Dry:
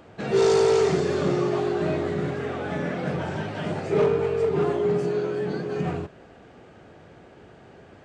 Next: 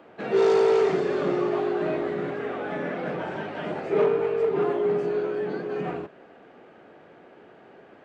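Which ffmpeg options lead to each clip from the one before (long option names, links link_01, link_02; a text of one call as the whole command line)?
ffmpeg -i in.wav -filter_complex "[0:a]acrossover=split=200 3400:gain=0.112 1 0.2[link_01][link_02][link_03];[link_01][link_02][link_03]amix=inputs=3:normalize=0" out.wav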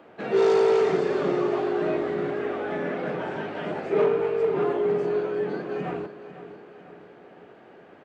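ffmpeg -i in.wav -af "aecho=1:1:501|1002|1503|2004|2505:0.211|0.104|0.0507|0.0249|0.0122" out.wav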